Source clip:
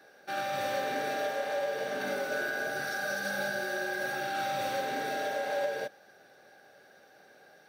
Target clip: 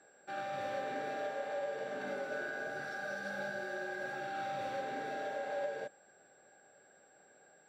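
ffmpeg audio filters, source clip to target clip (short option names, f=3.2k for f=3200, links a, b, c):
-af "aeval=exprs='val(0)+0.00316*sin(2*PI*7600*n/s)':c=same,aemphasis=mode=reproduction:type=75fm,volume=-6.5dB"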